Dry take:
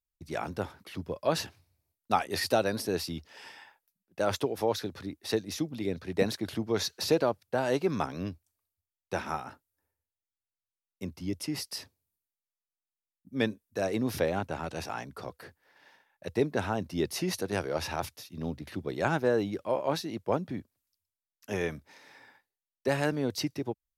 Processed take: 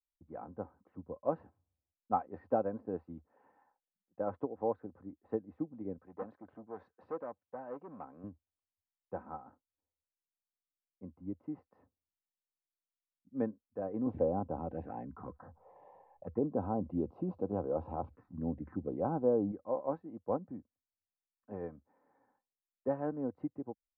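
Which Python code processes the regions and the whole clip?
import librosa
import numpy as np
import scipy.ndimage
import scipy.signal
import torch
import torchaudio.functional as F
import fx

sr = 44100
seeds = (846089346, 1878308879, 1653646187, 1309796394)

y = fx.chain(x, sr, fx.tilt_eq(slope=2.5),
    fx.transformer_sat(knee_hz=2200.0), at=(5.98, 8.24))
y = fx.chain(y, sr, fx.env_phaser(low_hz=230.0, high_hz=1900.0, full_db=-30.0),
    fx.env_flatten(amount_pct=50), at=(14.06, 19.52))
y = scipy.signal.sosfilt(scipy.signal.butter(4, 1100.0, 'lowpass', fs=sr, output='sos'), y)
y = y + 0.42 * np.pad(y, (int(3.9 * sr / 1000.0), 0))[:len(y)]
y = fx.upward_expand(y, sr, threshold_db=-37.0, expansion=1.5)
y = y * 10.0 ** (-4.0 / 20.0)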